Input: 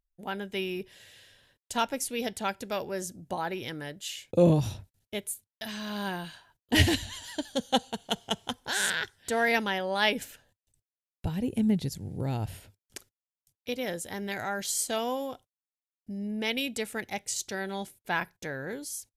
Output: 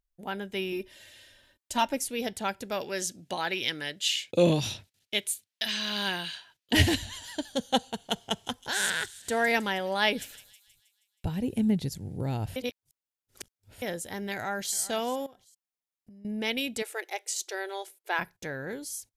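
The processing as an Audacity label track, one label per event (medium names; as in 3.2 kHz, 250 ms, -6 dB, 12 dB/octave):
0.720000	1.970000	comb 3.3 ms
2.810000	6.730000	frequency weighting D
8.190000	11.690000	feedback echo behind a high-pass 159 ms, feedback 53%, high-pass 5.2 kHz, level -10.5 dB
12.560000	13.820000	reverse
14.330000	14.760000	echo throw 390 ms, feedback 25%, level -17.5 dB
15.260000	16.250000	compression 8:1, threshold -49 dBFS
16.820000	18.190000	brick-wall FIR high-pass 320 Hz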